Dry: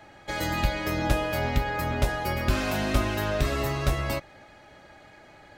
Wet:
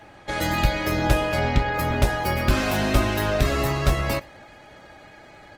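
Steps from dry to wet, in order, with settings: 1.26–1.73 LPF 11000 Hz -> 4700 Hz 12 dB/oct; outdoor echo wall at 18 m, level -26 dB; gain +4.5 dB; Opus 20 kbps 48000 Hz

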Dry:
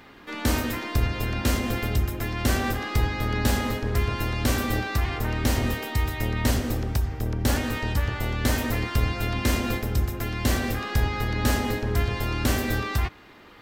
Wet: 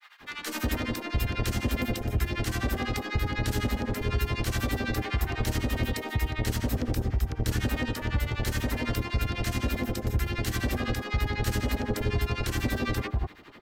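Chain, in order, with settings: limiter -18.5 dBFS, peak gain reduction 9.5 dB; grains 0.102 s, grains 12/s, spray 11 ms, pitch spread up and down by 0 st; bands offset in time highs, lows 0.19 s, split 1000 Hz; gain +3 dB

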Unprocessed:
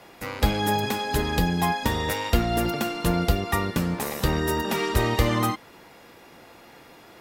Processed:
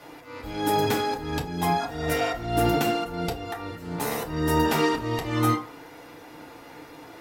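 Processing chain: spectral repair 1.83–2.39, 680–1400 Hz after; auto swell 0.349 s; FDN reverb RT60 0.38 s, low-frequency decay 0.85×, high-frequency decay 0.5×, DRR -3.5 dB; gain -1.5 dB

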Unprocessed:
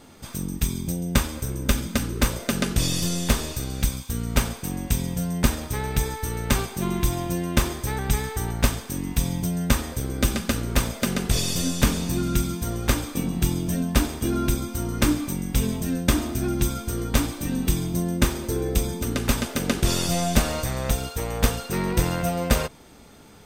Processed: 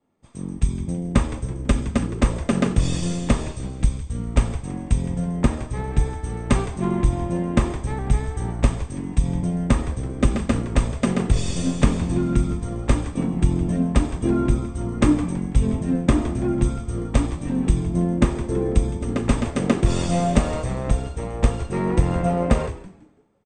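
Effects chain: steep low-pass 8900 Hz 96 dB/oct; bell 5100 Hz -14.5 dB 2 oct; notch 1500 Hz, Q 7.9; frequency-shifting echo 0.165 s, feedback 49%, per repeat -120 Hz, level -11 dB; compressor, threshold -18 dBFS, peak gain reduction 6.5 dB; three-band expander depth 100%; gain +4.5 dB

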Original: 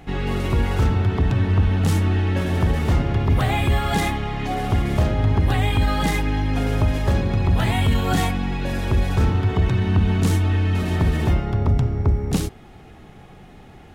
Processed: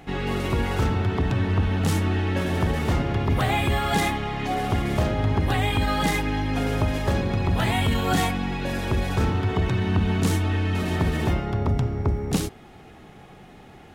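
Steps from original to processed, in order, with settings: low shelf 110 Hz -8.5 dB

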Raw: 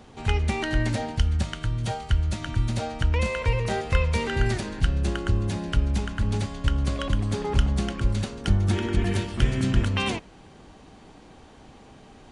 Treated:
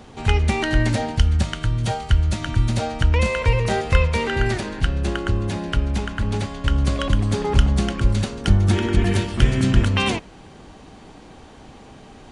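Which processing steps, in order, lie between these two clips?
4.07–6.69 tone controls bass -4 dB, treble -4 dB; gain +5.5 dB

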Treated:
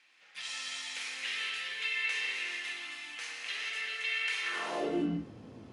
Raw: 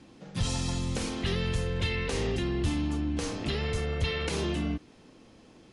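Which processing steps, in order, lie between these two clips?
high shelf 2300 Hz -10.5 dB; non-linear reverb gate 0.48 s flat, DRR -2 dB; high-pass sweep 2200 Hz -> 100 Hz, 4.42–5.33

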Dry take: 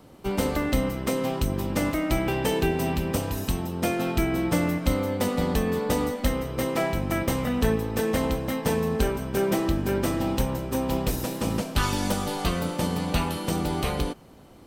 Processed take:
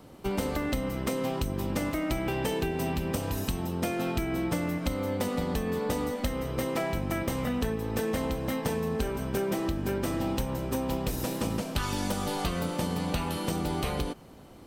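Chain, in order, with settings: compressor, threshold -26 dBFS, peak gain reduction 9.5 dB

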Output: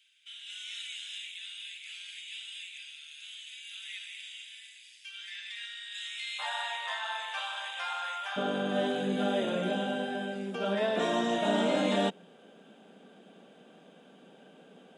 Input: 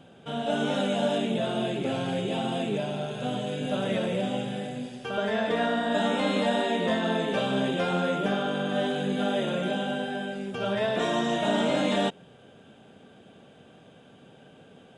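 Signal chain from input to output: elliptic high-pass 2100 Hz, stop band 80 dB, from 6.38 s 860 Hz, from 8.36 s 180 Hz; gain -2 dB

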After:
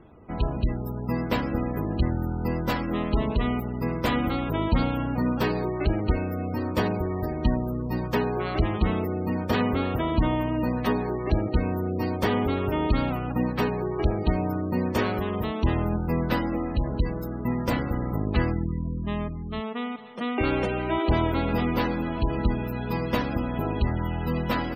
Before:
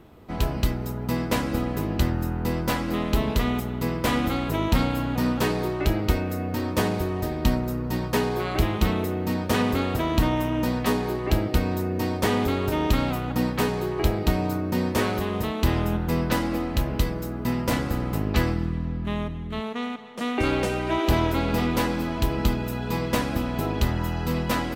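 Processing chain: spectral gate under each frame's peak -25 dB strong; gain -1 dB

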